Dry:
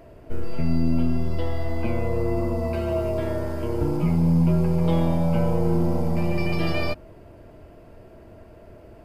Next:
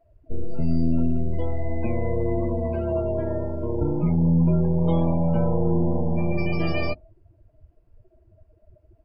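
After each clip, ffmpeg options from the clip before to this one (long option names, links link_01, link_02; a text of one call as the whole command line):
ffmpeg -i in.wav -af "afftdn=noise_reduction=25:noise_floor=-32" out.wav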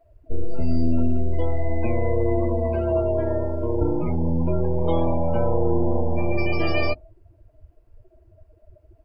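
ffmpeg -i in.wav -af "equalizer=frequency=170:width_type=o:width=0.69:gain=-12.5,volume=4dB" out.wav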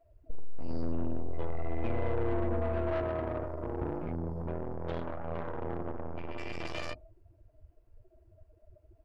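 ffmpeg -i in.wav -af "aeval=exprs='(tanh(15.8*val(0)+0.6)-tanh(0.6))/15.8':channel_layout=same,volume=-4dB" out.wav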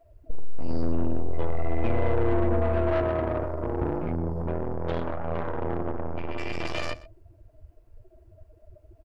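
ffmpeg -i in.wav -af "aecho=1:1:123:0.1,volume=7dB" out.wav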